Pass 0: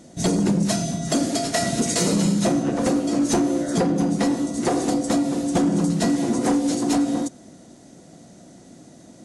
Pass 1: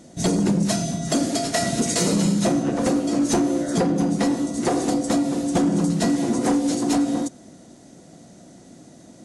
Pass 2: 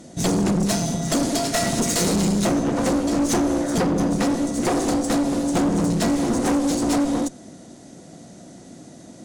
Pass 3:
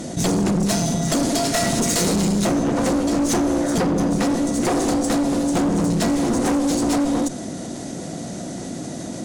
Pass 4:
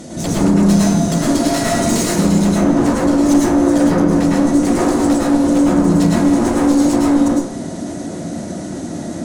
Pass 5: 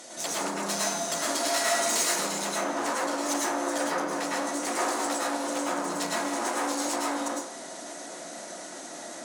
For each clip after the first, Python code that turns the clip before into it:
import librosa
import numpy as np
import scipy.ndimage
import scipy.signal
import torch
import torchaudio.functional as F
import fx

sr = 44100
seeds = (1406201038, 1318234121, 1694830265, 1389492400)

y1 = x
y2 = fx.clip_asym(y1, sr, top_db=-27.5, bottom_db=-16.5)
y2 = y2 * librosa.db_to_amplitude(3.5)
y3 = fx.env_flatten(y2, sr, amount_pct=50)
y4 = fx.rev_plate(y3, sr, seeds[0], rt60_s=0.59, hf_ratio=0.35, predelay_ms=95, drr_db=-6.0)
y4 = y4 * librosa.db_to_amplitude(-3.0)
y5 = scipy.signal.sosfilt(scipy.signal.butter(2, 810.0, 'highpass', fs=sr, output='sos'), y4)
y5 = y5 * librosa.db_to_amplitude(-4.0)